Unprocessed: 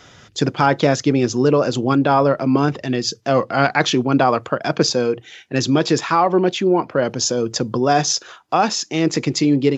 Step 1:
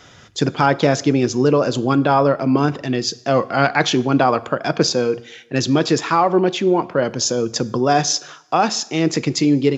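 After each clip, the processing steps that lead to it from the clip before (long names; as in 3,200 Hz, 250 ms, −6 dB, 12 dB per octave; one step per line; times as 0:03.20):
convolution reverb RT60 0.85 s, pre-delay 5 ms, DRR 17 dB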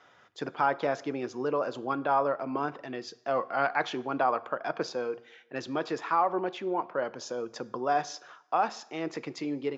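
resonant band-pass 1,000 Hz, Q 0.87
level −8.5 dB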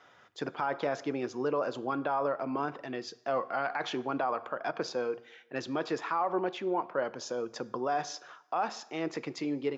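brickwall limiter −20.5 dBFS, peak gain reduction 8.5 dB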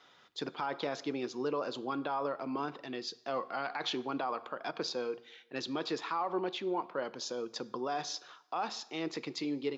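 graphic EQ with 15 bands 100 Hz −9 dB, 630 Hz −5 dB, 1,600 Hz −4 dB, 4,000 Hz +9 dB
level −1.5 dB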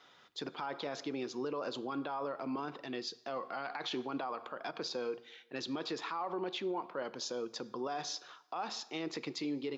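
brickwall limiter −29 dBFS, peak gain reduction 6.5 dB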